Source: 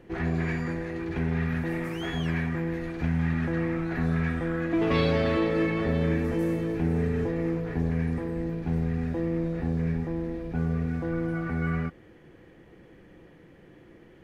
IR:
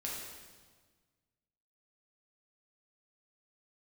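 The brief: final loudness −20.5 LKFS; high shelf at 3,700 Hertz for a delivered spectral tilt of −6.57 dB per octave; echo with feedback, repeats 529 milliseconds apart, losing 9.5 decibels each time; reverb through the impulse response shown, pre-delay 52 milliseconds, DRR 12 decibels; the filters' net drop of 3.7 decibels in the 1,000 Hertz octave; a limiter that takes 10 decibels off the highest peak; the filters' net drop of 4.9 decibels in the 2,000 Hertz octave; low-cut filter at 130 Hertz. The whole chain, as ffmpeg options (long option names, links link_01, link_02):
-filter_complex "[0:a]highpass=130,equalizer=frequency=1000:width_type=o:gain=-3.5,equalizer=frequency=2000:width_type=o:gain=-4,highshelf=frequency=3700:gain=-3.5,alimiter=limit=-24dB:level=0:latency=1,aecho=1:1:529|1058|1587|2116:0.335|0.111|0.0365|0.012,asplit=2[link_01][link_02];[1:a]atrim=start_sample=2205,adelay=52[link_03];[link_02][link_03]afir=irnorm=-1:irlink=0,volume=-13.5dB[link_04];[link_01][link_04]amix=inputs=2:normalize=0,volume=12dB"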